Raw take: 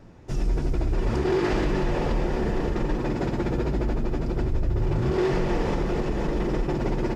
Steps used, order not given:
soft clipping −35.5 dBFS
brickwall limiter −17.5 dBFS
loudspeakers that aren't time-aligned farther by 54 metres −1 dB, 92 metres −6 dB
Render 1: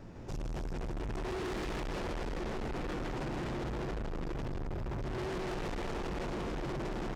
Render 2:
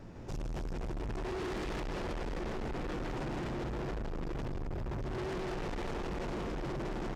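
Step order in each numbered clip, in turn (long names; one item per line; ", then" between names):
brickwall limiter, then loudspeakers that aren't time-aligned, then soft clipping
loudspeakers that aren't time-aligned, then brickwall limiter, then soft clipping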